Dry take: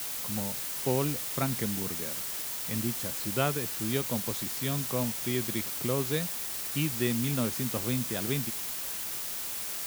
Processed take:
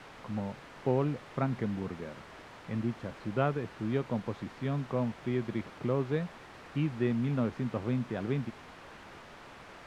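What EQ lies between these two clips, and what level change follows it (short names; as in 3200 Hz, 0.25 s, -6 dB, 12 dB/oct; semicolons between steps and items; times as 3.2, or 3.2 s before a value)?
LPF 1600 Hz 12 dB/oct; 0.0 dB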